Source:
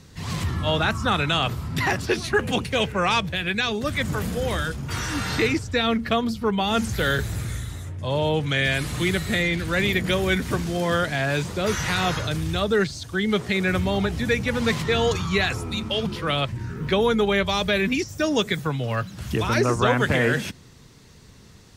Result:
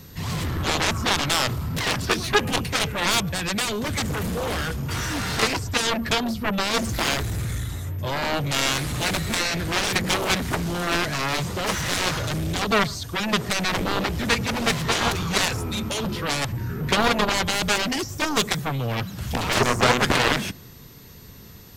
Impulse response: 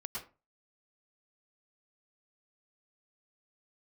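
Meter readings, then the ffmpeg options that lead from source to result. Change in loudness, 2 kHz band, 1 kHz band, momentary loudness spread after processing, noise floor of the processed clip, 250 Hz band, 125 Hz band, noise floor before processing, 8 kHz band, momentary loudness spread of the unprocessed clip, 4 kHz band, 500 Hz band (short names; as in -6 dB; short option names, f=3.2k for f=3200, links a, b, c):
0.0 dB, 0.0 dB, +1.5 dB, 7 LU, -44 dBFS, -2.0 dB, -1.5 dB, -48 dBFS, +7.5 dB, 6 LU, +2.5 dB, -3.5 dB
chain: -filter_complex "[0:a]aeval=exprs='0.422*(cos(1*acos(clip(val(0)/0.422,-1,1)))-cos(1*PI/2))+0.15*(cos(7*acos(clip(val(0)/0.422,-1,1)))-cos(7*PI/2))':c=same,aeval=exprs='val(0)+0.00316*sin(2*PI*13000*n/s)':c=same,asplit=2[a][b];[1:a]atrim=start_sample=2205,lowpass=1.2k[c];[b][c]afir=irnorm=-1:irlink=0,volume=-19dB[d];[a][d]amix=inputs=2:normalize=0"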